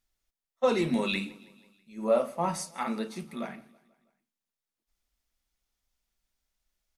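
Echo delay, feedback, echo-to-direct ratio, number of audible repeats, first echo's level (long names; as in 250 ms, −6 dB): 162 ms, 58%, −21.5 dB, 3, −23.0 dB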